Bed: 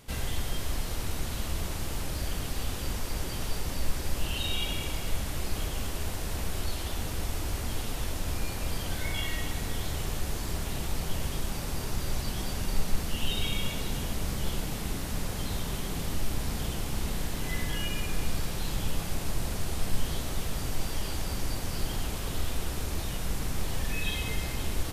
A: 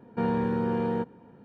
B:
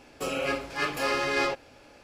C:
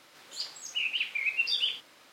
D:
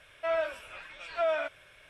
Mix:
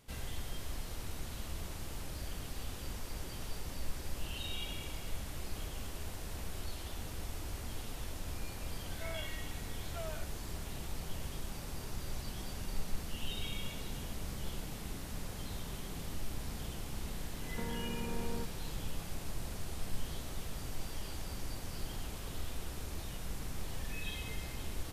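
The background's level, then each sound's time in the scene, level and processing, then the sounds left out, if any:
bed -9.5 dB
8.77 add D -17 dB
17.41 add A -4 dB + compressor, threshold -35 dBFS
not used: B, C

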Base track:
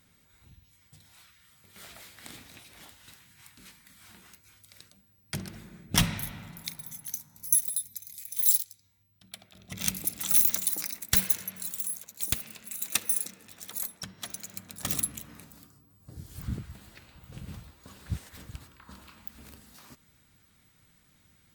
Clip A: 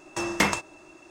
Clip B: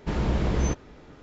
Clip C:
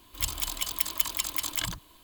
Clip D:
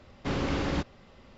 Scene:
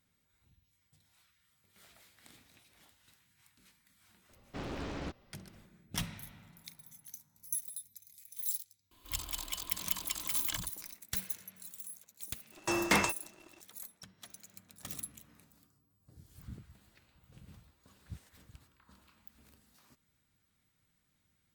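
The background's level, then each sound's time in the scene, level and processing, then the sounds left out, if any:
base track -13 dB
4.29 add D -10.5 dB + Doppler distortion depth 0.66 ms
8.91 add C -7.5 dB
12.51 add A -9.5 dB + sample leveller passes 2
not used: B

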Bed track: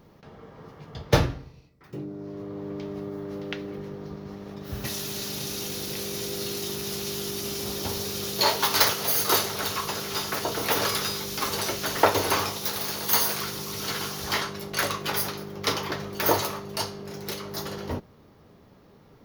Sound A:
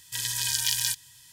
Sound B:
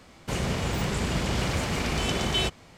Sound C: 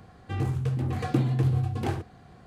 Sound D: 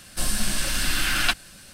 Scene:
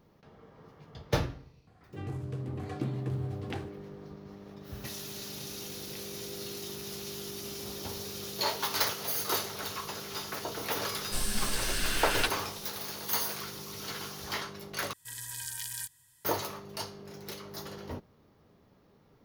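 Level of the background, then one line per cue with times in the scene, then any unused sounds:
bed track -8.5 dB
1.67 add C -10 dB
10.95 add D -7.5 dB
14.93 replace with A -8.5 dB + band shelf 3900 Hz -8.5 dB
not used: B

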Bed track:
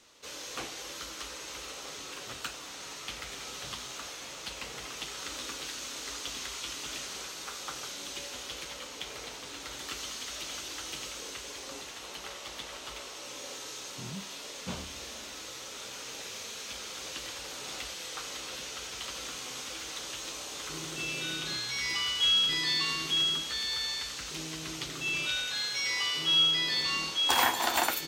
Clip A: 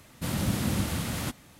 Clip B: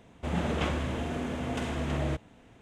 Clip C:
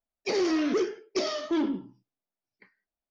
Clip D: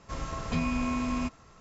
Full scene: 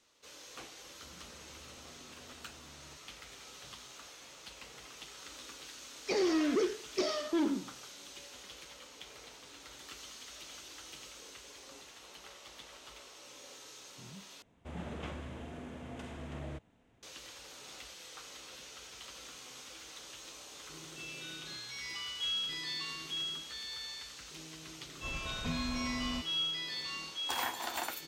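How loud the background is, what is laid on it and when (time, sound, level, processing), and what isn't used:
bed track -10 dB
0.8 add B -15 dB + compressor, threshold -40 dBFS
5.82 add C -4 dB
14.42 replace with B -12.5 dB
24.93 add D -7.5 dB
not used: A

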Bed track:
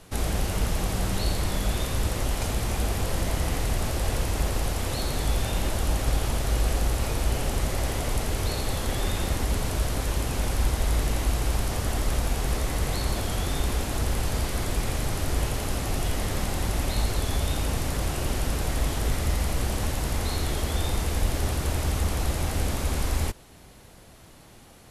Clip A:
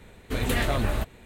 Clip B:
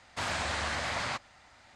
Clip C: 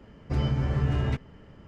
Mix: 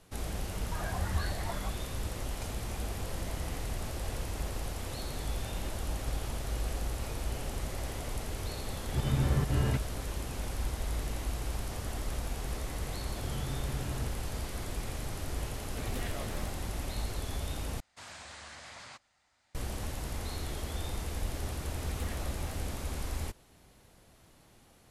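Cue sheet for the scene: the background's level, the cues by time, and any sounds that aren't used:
bed track -10 dB
0.53 add B -0.5 dB + spectral expander 4:1
8.61 add C -2 dB + auto swell 0.108 s
12.92 add C -13 dB
15.46 add A -11 dB + compressor 3:1, threshold -26 dBFS
17.8 replace with B -16.5 dB + high shelf 5500 Hz +11 dB
21.51 add A -9 dB + compressor 5:1, threshold -33 dBFS

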